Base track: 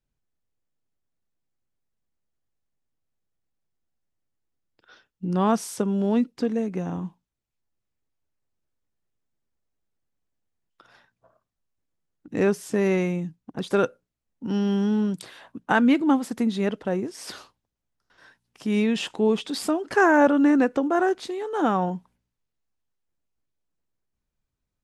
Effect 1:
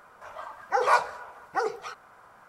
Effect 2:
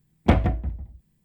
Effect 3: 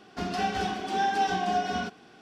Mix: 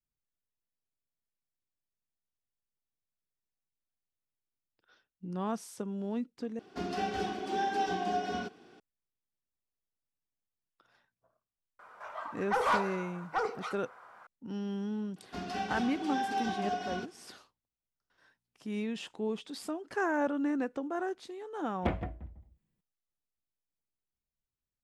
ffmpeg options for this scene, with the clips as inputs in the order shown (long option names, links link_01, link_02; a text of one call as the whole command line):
ffmpeg -i bed.wav -i cue0.wav -i cue1.wav -i cue2.wav -filter_complex "[3:a]asplit=2[link_01][link_02];[0:a]volume=-13dB[link_03];[link_01]equalizer=frequency=370:width_type=o:width=0.96:gain=7[link_04];[1:a]asplit=2[link_05][link_06];[link_06]highpass=frequency=720:poles=1,volume=18dB,asoftclip=type=tanh:threshold=-8dB[link_07];[link_05][link_07]amix=inputs=2:normalize=0,lowpass=frequency=2500:poles=1,volume=-6dB[link_08];[2:a]bass=frequency=250:gain=-6,treble=frequency=4000:gain=-7[link_09];[link_03]asplit=2[link_10][link_11];[link_10]atrim=end=6.594[link_12];[link_04]atrim=end=2.21,asetpts=PTS-STARTPTS,volume=-7dB[link_13];[link_11]atrim=start=8.796[link_14];[link_08]atrim=end=2.48,asetpts=PTS-STARTPTS,volume=-11dB,afade=type=in:duration=0.004:curve=hsin,afade=type=out:start_time=2.476:duration=0.004:curve=hsin,adelay=11790[link_15];[link_02]atrim=end=2.21,asetpts=PTS-STARTPTS,volume=-7.5dB,afade=type=in:duration=0.004:curve=hsin,afade=type=out:start_time=2.206:duration=0.004:curve=hsin,adelay=15160[link_16];[link_09]atrim=end=1.24,asetpts=PTS-STARTPTS,volume=-10.5dB,afade=type=in:duration=0.004:curve=hsin,afade=type=out:start_time=1.236:duration=0.004:curve=hsin,adelay=21570[link_17];[link_12][link_13]acrossfade=duration=0.004:curve1=hsin:curve2=hsin[link_18];[link_18][link_14]acrossfade=duration=0.004:curve1=hsin:curve2=hsin[link_19];[link_19][link_15][link_16][link_17]amix=inputs=4:normalize=0" out.wav